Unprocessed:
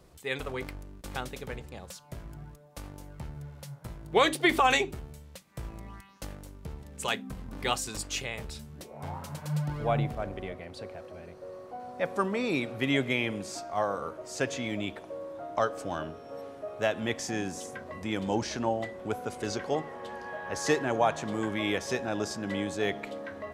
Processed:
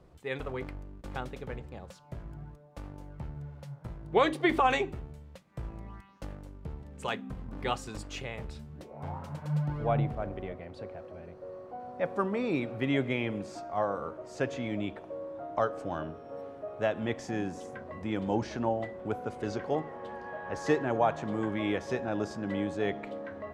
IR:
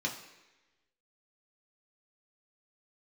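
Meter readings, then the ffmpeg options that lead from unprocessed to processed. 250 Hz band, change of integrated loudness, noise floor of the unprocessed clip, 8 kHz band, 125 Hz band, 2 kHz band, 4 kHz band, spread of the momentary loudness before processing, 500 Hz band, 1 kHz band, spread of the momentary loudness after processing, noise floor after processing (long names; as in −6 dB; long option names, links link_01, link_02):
0.0 dB, −2.0 dB, −50 dBFS, −13.0 dB, +0.5 dB, −4.5 dB, −8.0 dB, 17 LU, −0.5 dB, −1.5 dB, 16 LU, −51 dBFS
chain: -filter_complex "[0:a]lowpass=frequency=1600:poles=1,asplit=2[link_01][link_02];[1:a]atrim=start_sample=2205,afade=type=out:start_time=0.31:duration=0.01,atrim=end_sample=14112[link_03];[link_02][link_03]afir=irnorm=-1:irlink=0,volume=-24dB[link_04];[link_01][link_04]amix=inputs=2:normalize=0"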